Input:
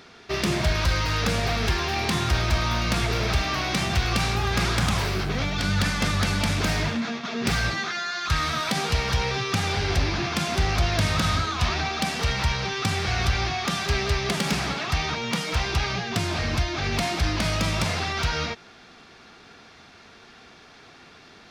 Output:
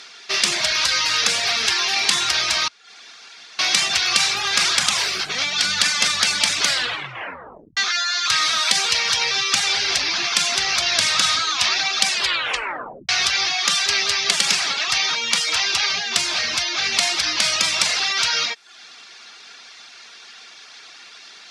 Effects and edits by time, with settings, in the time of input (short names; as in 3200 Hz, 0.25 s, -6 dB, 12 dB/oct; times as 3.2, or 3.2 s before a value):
2.68–3.59 room tone
6.59 tape stop 1.18 s
12.09 tape stop 1.00 s
whole clip: weighting filter ITU-R 468; reverb removal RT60 0.54 s; bell 69 Hz -7 dB 0.68 oct; gain +2.5 dB